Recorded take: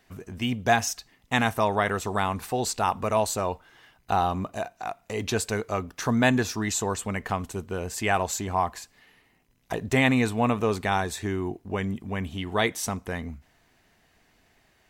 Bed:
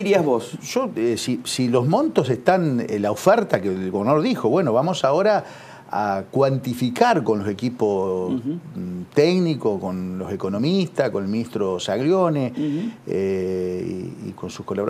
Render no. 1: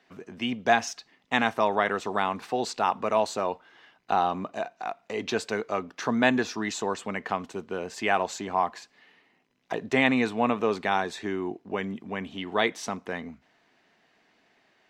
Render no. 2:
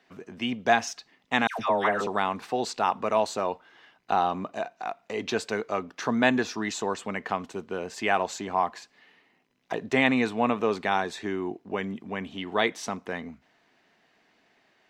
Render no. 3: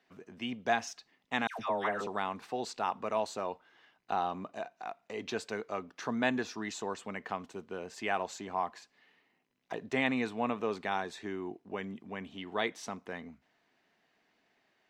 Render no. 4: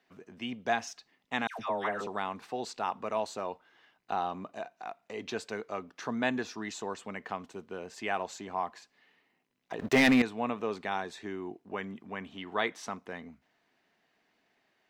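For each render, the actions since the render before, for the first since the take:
three-band isolator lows -24 dB, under 170 Hz, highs -20 dB, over 5.8 kHz
1.47–2.07 s: phase dispersion lows, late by 122 ms, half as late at 1.1 kHz
trim -8 dB
9.79–10.22 s: waveshaping leveller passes 3; 11.68–12.99 s: peaking EQ 1.3 kHz +5 dB 1.3 oct

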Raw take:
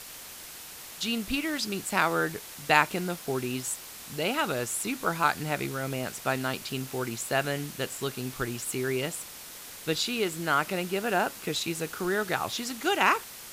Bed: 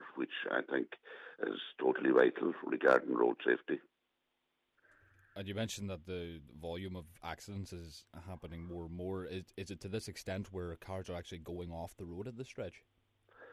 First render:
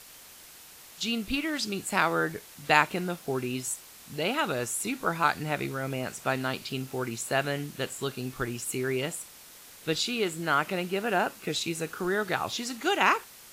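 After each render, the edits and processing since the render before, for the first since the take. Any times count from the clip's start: noise print and reduce 6 dB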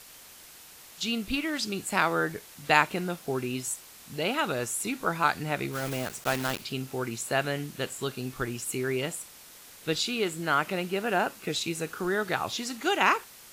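5.73–6.65 s: block-companded coder 3-bit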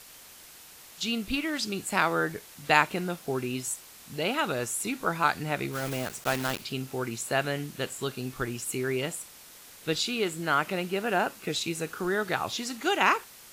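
no audible change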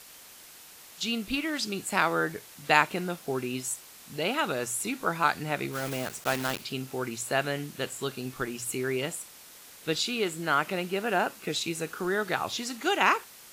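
bass shelf 92 Hz -6 dB; hum notches 60/120 Hz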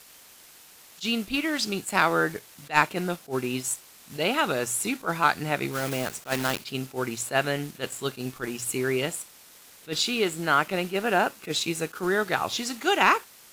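waveshaping leveller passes 1; attacks held to a fixed rise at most 310 dB/s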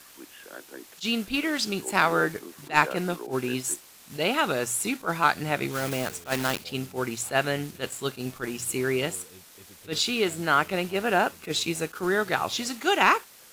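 add bed -8.5 dB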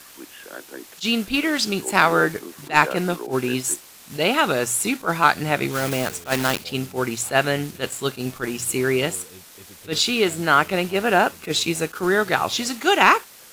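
trim +5.5 dB; peak limiter -1 dBFS, peak gain reduction 1.5 dB

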